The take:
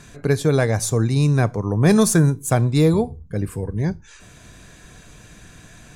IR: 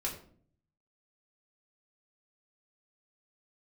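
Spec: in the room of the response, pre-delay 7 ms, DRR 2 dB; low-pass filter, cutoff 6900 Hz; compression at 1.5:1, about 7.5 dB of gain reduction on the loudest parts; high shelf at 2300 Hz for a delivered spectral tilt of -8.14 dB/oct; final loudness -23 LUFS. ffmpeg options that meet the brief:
-filter_complex "[0:a]lowpass=6.9k,highshelf=f=2.3k:g=-8.5,acompressor=threshold=-33dB:ratio=1.5,asplit=2[a][b];[1:a]atrim=start_sample=2205,adelay=7[c];[b][c]afir=irnorm=-1:irlink=0,volume=-4.5dB[d];[a][d]amix=inputs=2:normalize=0,volume=0.5dB"

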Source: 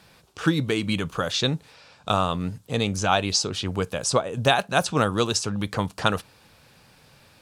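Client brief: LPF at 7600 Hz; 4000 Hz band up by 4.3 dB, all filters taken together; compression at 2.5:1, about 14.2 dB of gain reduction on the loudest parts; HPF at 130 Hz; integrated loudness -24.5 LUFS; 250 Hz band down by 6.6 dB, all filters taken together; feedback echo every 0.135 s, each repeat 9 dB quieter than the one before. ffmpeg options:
-af "highpass=130,lowpass=7.6k,equalizer=f=250:t=o:g=-9,equalizer=f=4k:t=o:g=5.5,acompressor=threshold=-38dB:ratio=2.5,aecho=1:1:135|270|405|540:0.355|0.124|0.0435|0.0152,volume=11.5dB"

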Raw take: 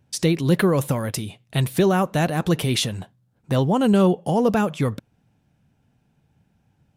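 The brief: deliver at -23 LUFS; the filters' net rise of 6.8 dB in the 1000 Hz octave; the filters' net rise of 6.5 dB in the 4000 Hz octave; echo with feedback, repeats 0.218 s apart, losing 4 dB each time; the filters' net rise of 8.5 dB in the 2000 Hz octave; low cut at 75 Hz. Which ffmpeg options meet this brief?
-af "highpass=75,equalizer=f=1k:t=o:g=7,equalizer=f=2k:t=o:g=7.5,equalizer=f=4k:t=o:g=5,aecho=1:1:218|436|654|872|1090|1308|1526|1744|1962:0.631|0.398|0.25|0.158|0.0994|0.0626|0.0394|0.0249|0.0157,volume=-5.5dB"

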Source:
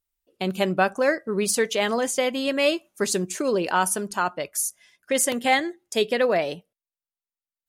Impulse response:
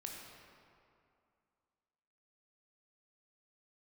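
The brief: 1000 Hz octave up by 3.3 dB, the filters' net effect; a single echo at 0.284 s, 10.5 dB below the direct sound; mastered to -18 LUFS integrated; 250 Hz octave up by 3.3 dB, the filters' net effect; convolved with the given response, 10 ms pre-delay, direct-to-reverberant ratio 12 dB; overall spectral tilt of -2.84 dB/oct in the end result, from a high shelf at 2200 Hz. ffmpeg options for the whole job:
-filter_complex "[0:a]equalizer=f=250:t=o:g=4,equalizer=f=1k:t=o:g=3.5,highshelf=f=2.2k:g=3.5,aecho=1:1:284:0.299,asplit=2[a][b];[1:a]atrim=start_sample=2205,adelay=10[c];[b][c]afir=irnorm=-1:irlink=0,volume=-9.5dB[d];[a][d]amix=inputs=2:normalize=0,volume=2.5dB"

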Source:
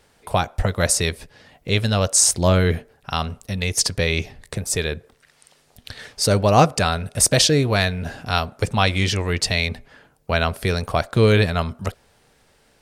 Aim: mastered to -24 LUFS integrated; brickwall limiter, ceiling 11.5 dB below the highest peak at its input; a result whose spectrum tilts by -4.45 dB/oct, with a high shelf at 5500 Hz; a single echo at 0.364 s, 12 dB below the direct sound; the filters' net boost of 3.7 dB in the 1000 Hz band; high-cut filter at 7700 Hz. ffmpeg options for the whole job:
-af "lowpass=7.7k,equalizer=f=1k:t=o:g=5.5,highshelf=f=5.5k:g=-7,alimiter=limit=-11.5dB:level=0:latency=1,aecho=1:1:364:0.251,volume=-0.5dB"

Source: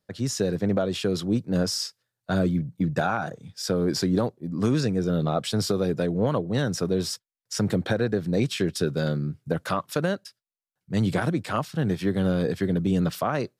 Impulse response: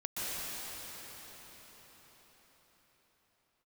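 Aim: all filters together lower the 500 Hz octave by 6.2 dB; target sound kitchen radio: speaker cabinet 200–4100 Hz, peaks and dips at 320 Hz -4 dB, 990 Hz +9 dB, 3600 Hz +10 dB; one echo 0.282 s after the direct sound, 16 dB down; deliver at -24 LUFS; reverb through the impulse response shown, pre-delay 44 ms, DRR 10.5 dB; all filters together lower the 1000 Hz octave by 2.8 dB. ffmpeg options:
-filter_complex "[0:a]equalizer=f=500:t=o:g=-5.5,equalizer=f=1k:t=o:g=-6.5,aecho=1:1:282:0.158,asplit=2[a][b];[1:a]atrim=start_sample=2205,adelay=44[c];[b][c]afir=irnorm=-1:irlink=0,volume=-16.5dB[d];[a][d]amix=inputs=2:normalize=0,highpass=200,equalizer=f=320:t=q:w=4:g=-4,equalizer=f=990:t=q:w=4:g=9,equalizer=f=3.6k:t=q:w=4:g=10,lowpass=f=4.1k:w=0.5412,lowpass=f=4.1k:w=1.3066,volume=6dB"

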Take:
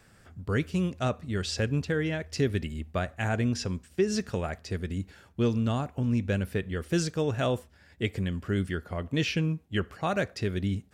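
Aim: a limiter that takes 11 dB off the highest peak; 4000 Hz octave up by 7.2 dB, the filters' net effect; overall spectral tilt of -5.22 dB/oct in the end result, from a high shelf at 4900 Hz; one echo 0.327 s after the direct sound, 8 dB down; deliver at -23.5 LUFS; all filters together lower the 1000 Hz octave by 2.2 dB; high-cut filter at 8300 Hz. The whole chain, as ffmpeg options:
-af "lowpass=8.3k,equalizer=f=1k:t=o:g=-4,equalizer=f=4k:t=o:g=8,highshelf=f=4.9k:g=4,alimiter=limit=-21dB:level=0:latency=1,aecho=1:1:327:0.398,volume=8dB"

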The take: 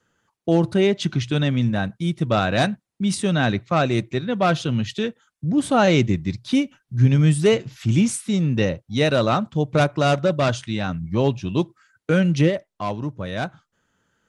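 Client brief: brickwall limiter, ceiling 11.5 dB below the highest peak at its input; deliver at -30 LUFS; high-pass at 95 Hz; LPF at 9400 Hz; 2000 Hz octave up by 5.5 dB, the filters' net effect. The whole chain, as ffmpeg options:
-af "highpass=95,lowpass=9.4k,equalizer=f=2k:t=o:g=7.5,volume=-5dB,alimiter=limit=-19dB:level=0:latency=1"

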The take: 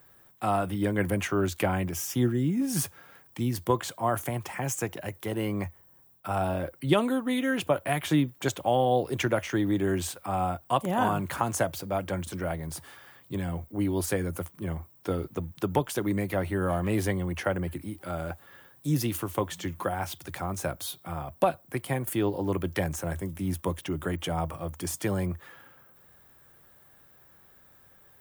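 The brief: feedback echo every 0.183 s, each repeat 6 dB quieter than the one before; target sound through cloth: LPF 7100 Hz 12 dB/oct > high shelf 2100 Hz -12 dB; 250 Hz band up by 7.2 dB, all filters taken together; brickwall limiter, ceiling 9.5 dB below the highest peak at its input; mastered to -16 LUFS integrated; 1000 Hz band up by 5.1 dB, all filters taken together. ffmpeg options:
-af "equalizer=f=250:t=o:g=9,equalizer=f=1k:t=o:g=9,alimiter=limit=-13dB:level=0:latency=1,lowpass=7.1k,highshelf=f=2.1k:g=-12,aecho=1:1:183|366|549|732|915|1098:0.501|0.251|0.125|0.0626|0.0313|0.0157,volume=9.5dB"

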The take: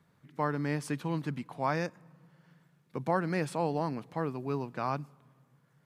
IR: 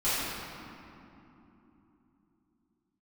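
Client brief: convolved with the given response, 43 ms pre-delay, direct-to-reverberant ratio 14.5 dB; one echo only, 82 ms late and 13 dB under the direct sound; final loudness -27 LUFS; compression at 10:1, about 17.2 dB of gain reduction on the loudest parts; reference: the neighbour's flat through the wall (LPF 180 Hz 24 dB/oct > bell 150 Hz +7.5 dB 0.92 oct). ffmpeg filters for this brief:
-filter_complex "[0:a]acompressor=threshold=-42dB:ratio=10,aecho=1:1:82:0.224,asplit=2[a][b];[1:a]atrim=start_sample=2205,adelay=43[c];[b][c]afir=irnorm=-1:irlink=0,volume=-27dB[d];[a][d]amix=inputs=2:normalize=0,lowpass=f=180:w=0.5412,lowpass=f=180:w=1.3066,equalizer=f=150:t=o:w=0.92:g=7.5,volume=21dB"

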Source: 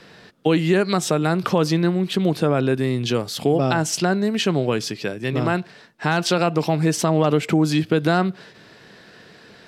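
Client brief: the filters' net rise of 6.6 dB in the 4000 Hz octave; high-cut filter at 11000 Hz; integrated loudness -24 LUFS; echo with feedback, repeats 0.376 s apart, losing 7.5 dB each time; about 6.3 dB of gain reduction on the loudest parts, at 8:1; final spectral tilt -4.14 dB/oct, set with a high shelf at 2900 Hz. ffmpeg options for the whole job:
-af "lowpass=11k,highshelf=f=2.9k:g=5.5,equalizer=f=4k:t=o:g=4,acompressor=threshold=-19dB:ratio=8,aecho=1:1:376|752|1128|1504|1880:0.422|0.177|0.0744|0.0312|0.0131,volume=-0.5dB"

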